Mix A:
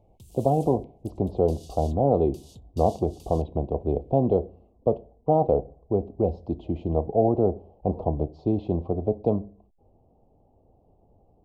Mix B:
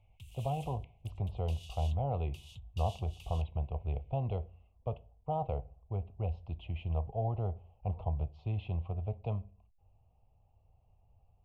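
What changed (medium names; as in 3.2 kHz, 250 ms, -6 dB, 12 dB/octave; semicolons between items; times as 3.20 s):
speech -3.0 dB; master: add FFT filter 110 Hz 0 dB, 300 Hz -24 dB, 2.7 kHz +13 dB, 4.5 kHz -8 dB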